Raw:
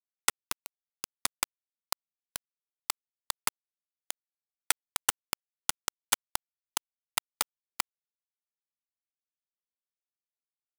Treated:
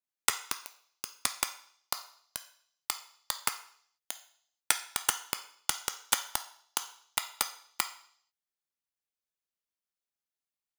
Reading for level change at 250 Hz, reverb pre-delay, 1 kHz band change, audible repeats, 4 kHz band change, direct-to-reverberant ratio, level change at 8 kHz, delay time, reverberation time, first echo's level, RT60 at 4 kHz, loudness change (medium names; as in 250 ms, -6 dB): 0.0 dB, 3 ms, +1.0 dB, no echo, +1.0 dB, 7.5 dB, +0.5 dB, no echo, 0.60 s, no echo, 0.70 s, +0.5 dB